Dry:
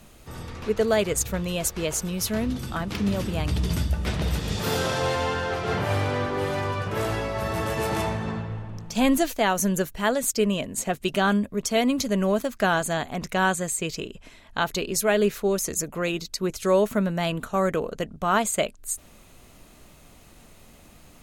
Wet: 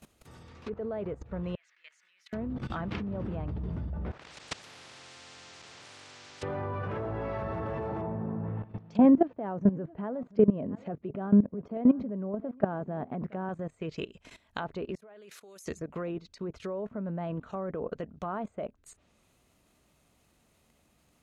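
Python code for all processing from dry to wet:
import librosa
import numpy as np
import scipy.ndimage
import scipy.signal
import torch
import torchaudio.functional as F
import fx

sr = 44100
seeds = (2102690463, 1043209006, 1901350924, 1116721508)

y = fx.chain(x, sr, fx.level_steps(step_db=11),
    fx.ladder_bandpass(hz=2100.0, resonance_pct=65), at=(1.55, 2.33))
y = fx.chain(y, sr, fx.cabinet(low_hz=110.0, low_slope=12, high_hz=8900.0, hz=(130.0, 200.0, 540.0, 810.0, 3400.0), db=(5, -7, 7, 3, -6)),
    fx.level_steps(step_db=14),
    fx.spectral_comp(ratio=10.0), at=(4.11, 6.43))
y = fx.chain(y, sr, fx.bandpass_edges(low_hz=170.0, high_hz=4500.0),
    fx.tilt_eq(slope=-3.0),
    fx.echo_single(ms=682, db=-24.0), at=(8.01, 13.49))
y = fx.chain(y, sr, fx.highpass(hz=680.0, slope=6),
    fx.peak_eq(hz=11000.0, db=11.0, octaves=0.85),
    fx.level_steps(step_db=18), at=(14.95, 15.66))
y = fx.env_lowpass_down(y, sr, base_hz=1000.0, full_db=-22.5)
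y = scipy.signal.sosfilt(scipy.signal.butter(2, 51.0, 'highpass', fs=sr, output='sos'), y)
y = fx.level_steps(y, sr, step_db=17)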